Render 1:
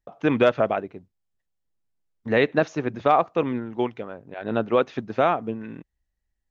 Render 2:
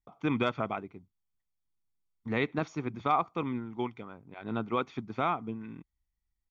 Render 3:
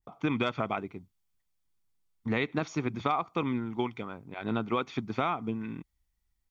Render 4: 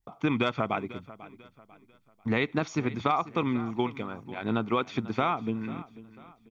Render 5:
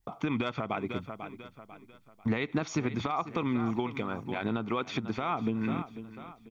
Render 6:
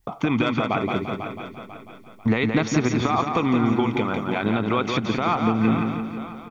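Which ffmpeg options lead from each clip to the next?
-af "aecho=1:1:0.9:0.6,volume=-8.5dB"
-af "acompressor=threshold=-31dB:ratio=5,adynamicequalizer=threshold=0.00282:dfrequency=2100:dqfactor=0.7:tfrequency=2100:tqfactor=0.7:attack=5:release=100:ratio=0.375:range=2:mode=boostabove:tftype=highshelf,volume=5.5dB"
-af "aecho=1:1:494|988|1482:0.133|0.0493|0.0183,volume=2.5dB"
-af "acompressor=threshold=-28dB:ratio=5,alimiter=limit=-24dB:level=0:latency=1:release=177,volume=5dB"
-af "aecho=1:1:172|344|516|688|860:0.562|0.231|0.0945|0.0388|0.0159,volume=8.5dB"

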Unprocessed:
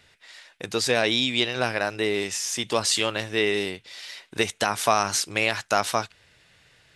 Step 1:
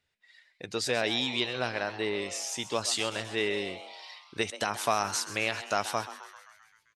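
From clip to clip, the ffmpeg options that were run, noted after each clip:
-filter_complex "[0:a]afftdn=nr=15:nf=-43,asplit=2[a][b];[b]asplit=7[c][d][e][f][g][h][i];[c]adelay=131,afreqshift=130,volume=-13.5dB[j];[d]adelay=262,afreqshift=260,volume=-17.7dB[k];[e]adelay=393,afreqshift=390,volume=-21.8dB[l];[f]adelay=524,afreqshift=520,volume=-26dB[m];[g]adelay=655,afreqshift=650,volume=-30.1dB[n];[h]adelay=786,afreqshift=780,volume=-34.3dB[o];[i]adelay=917,afreqshift=910,volume=-38.4dB[p];[j][k][l][m][n][o][p]amix=inputs=7:normalize=0[q];[a][q]amix=inputs=2:normalize=0,volume=-6.5dB"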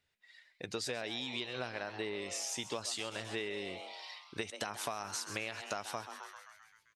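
-af "acompressor=threshold=-33dB:ratio=10,volume=-1.5dB"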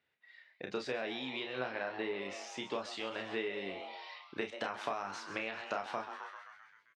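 -af "highpass=180,lowpass=2.7k,aecho=1:1:31|45:0.501|0.224,volume=1.5dB"

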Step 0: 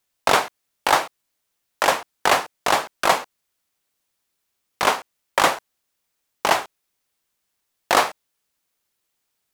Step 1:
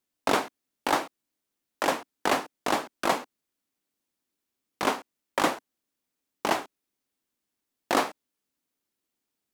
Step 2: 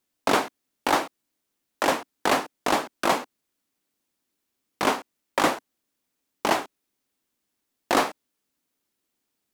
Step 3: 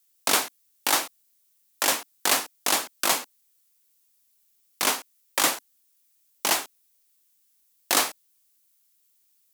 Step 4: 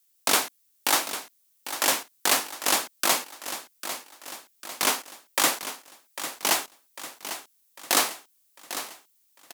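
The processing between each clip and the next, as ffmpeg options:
-af "equalizer=f=270:t=o:w=1.1:g=13,volume=-9dB"
-af "asoftclip=type=tanh:threshold=-15dB,volume=4.5dB"
-af "crystalizer=i=9:c=0,volume=-9dB"
-af "aecho=1:1:799|1598|2397|3196|3995:0.266|0.136|0.0692|0.0353|0.018"

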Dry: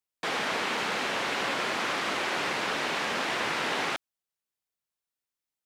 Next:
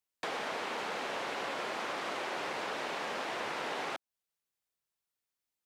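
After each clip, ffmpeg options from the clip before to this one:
-filter_complex "[0:a]acrossover=split=390|940[a][b][c];[a]acompressor=threshold=-53dB:ratio=4[d];[b]acompressor=threshold=-38dB:ratio=4[e];[c]acompressor=threshold=-41dB:ratio=4[f];[d][e][f]amix=inputs=3:normalize=0"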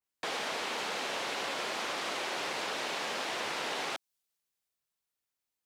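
-af "adynamicequalizer=threshold=0.002:dfrequency=2600:dqfactor=0.7:tfrequency=2600:tqfactor=0.7:attack=5:release=100:ratio=0.375:range=4:mode=boostabove:tftype=highshelf"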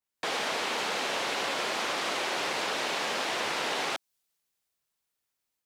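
-af "dynaudnorm=f=130:g=3:m=4.5dB"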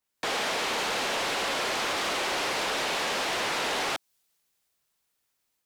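-af "asoftclip=type=tanh:threshold=-31dB,volume=6dB"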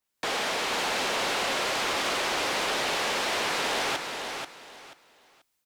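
-af "aecho=1:1:485|970|1455:0.501|0.12|0.0289"

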